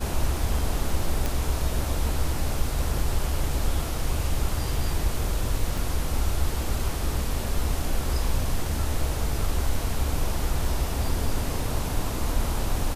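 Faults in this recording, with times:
0:01.26: click
0:05.77: drop-out 3.3 ms

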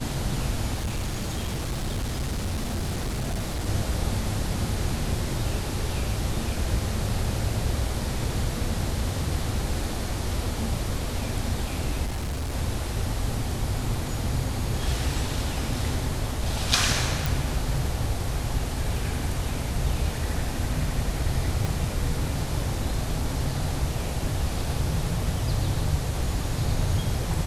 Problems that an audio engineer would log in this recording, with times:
0:00.74–0:03.67: clipping −24.5 dBFS
0:12.06–0:12.55: clipping −26 dBFS
0:17.26: click
0:21.65: click

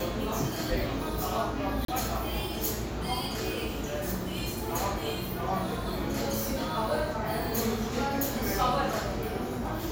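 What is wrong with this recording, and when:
0:01.85–0:01.88: drop-out 33 ms

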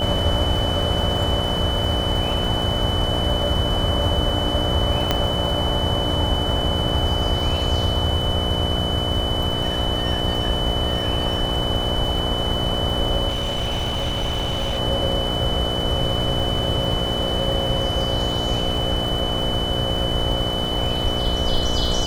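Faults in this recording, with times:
mains buzz 60 Hz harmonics 12 −27 dBFS
surface crackle 230 per second −31 dBFS
whistle 3,000 Hz −25 dBFS
0:05.11: click −4 dBFS
0:13.28–0:14.80: clipping −19.5 dBFS

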